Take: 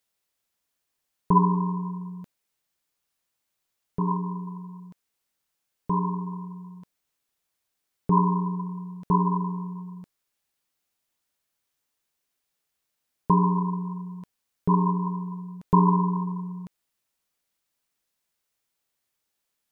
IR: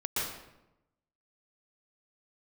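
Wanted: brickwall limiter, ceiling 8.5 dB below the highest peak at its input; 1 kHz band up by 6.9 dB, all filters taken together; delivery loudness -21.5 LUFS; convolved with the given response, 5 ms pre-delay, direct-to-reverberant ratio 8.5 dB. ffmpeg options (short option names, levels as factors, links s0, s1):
-filter_complex "[0:a]equalizer=f=1000:t=o:g=7,alimiter=limit=0.316:level=0:latency=1,asplit=2[s0][s1];[1:a]atrim=start_sample=2205,adelay=5[s2];[s1][s2]afir=irnorm=-1:irlink=0,volume=0.168[s3];[s0][s3]amix=inputs=2:normalize=0,volume=1.26"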